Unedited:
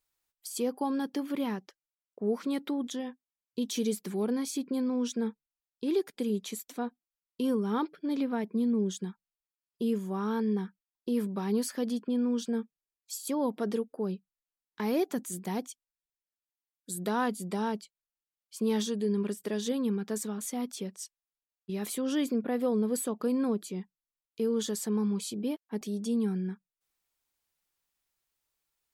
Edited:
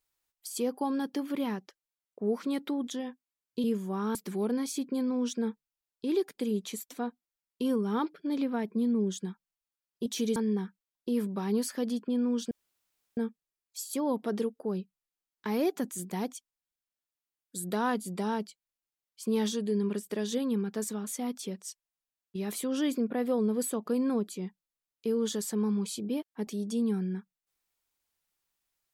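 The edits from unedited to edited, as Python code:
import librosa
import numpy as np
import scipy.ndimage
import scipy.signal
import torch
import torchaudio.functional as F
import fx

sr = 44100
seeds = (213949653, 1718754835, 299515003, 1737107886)

y = fx.edit(x, sr, fx.swap(start_s=3.64, length_s=0.3, other_s=9.85, other_length_s=0.51),
    fx.insert_room_tone(at_s=12.51, length_s=0.66), tone=tone)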